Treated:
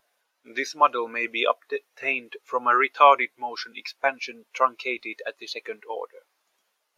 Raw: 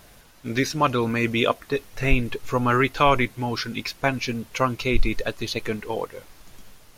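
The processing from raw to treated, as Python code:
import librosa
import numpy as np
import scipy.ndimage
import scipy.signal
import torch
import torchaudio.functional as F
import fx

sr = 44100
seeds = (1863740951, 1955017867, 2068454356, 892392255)

y = scipy.signal.sosfilt(scipy.signal.butter(2, 550.0, 'highpass', fs=sr, output='sos'), x)
y = fx.spectral_expand(y, sr, expansion=1.5)
y = y * 10.0 ** (3.5 / 20.0)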